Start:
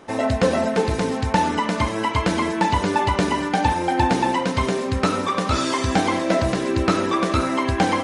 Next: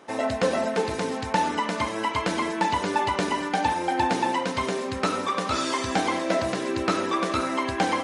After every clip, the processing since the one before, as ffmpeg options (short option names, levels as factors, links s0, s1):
-af "highpass=f=290:p=1,volume=0.708"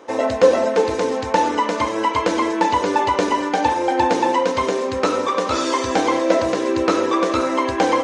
-af "equalizer=f=160:t=o:w=0.33:g=-12,equalizer=f=315:t=o:w=0.33:g=6,equalizer=f=500:t=o:w=0.33:g=11,equalizer=f=1000:t=o:w=0.33:g=5,equalizer=f=6300:t=o:w=0.33:g=4,equalizer=f=10000:t=o:w=0.33:g=-10,volume=1.41"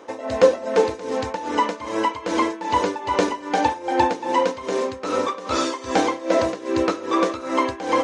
-af "tremolo=f=2.5:d=0.84"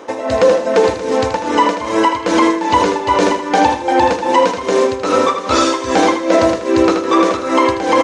-af "aecho=1:1:79|158|237|316:0.355|0.117|0.0386|0.0128,alimiter=level_in=3.16:limit=0.891:release=50:level=0:latency=1,volume=0.891"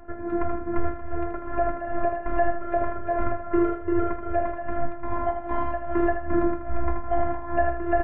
-af "highpass=f=240:t=q:w=0.5412,highpass=f=240:t=q:w=1.307,lowpass=f=2100:t=q:w=0.5176,lowpass=f=2100:t=q:w=0.7071,lowpass=f=2100:t=q:w=1.932,afreqshift=-390,afftfilt=real='hypot(re,im)*cos(PI*b)':imag='0':win_size=512:overlap=0.75,bandreject=f=60.51:t=h:w=4,bandreject=f=121.02:t=h:w=4,bandreject=f=181.53:t=h:w=4,bandreject=f=242.04:t=h:w=4,bandreject=f=302.55:t=h:w=4,bandreject=f=363.06:t=h:w=4,bandreject=f=423.57:t=h:w=4,bandreject=f=484.08:t=h:w=4,bandreject=f=544.59:t=h:w=4,bandreject=f=605.1:t=h:w=4,bandreject=f=665.61:t=h:w=4,bandreject=f=726.12:t=h:w=4,bandreject=f=786.63:t=h:w=4,bandreject=f=847.14:t=h:w=4,bandreject=f=907.65:t=h:w=4,bandreject=f=968.16:t=h:w=4,bandreject=f=1028.67:t=h:w=4,bandreject=f=1089.18:t=h:w=4,bandreject=f=1149.69:t=h:w=4,bandreject=f=1210.2:t=h:w=4,bandreject=f=1270.71:t=h:w=4,bandreject=f=1331.22:t=h:w=4,bandreject=f=1391.73:t=h:w=4,bandreject=f=1452.24:t=h:w=4,bandreject=f=1512.75:t=h:w=4,bandreject=f=1573.26:t=h:w=4,bandreject=f=1633.77:t=h:w=4,bandreject=f=1694.28:t=h:w=4,bandreject=f=1754.79:t=h:w=4,bandreject=f=1815.3:t=h:w=4,bandreject=f=1875.81:t=h:w=4,bandreject=f=1936.32:t=h:w=4,bandreject=f=1996.83:t=h:w=4,bandreject=f=2057.34:t=h:w=4,bandreject=f=2117.85:t=h:w=4,volume=0.562"